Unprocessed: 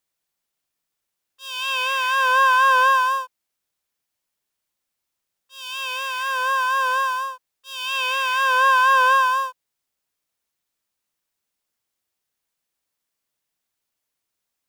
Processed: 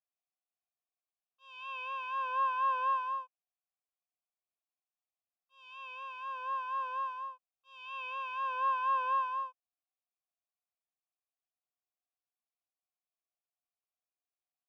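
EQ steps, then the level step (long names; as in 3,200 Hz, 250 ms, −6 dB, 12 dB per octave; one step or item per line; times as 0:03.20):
formant filter a
high-frequency loss of the air 59 metres
−6.0 dB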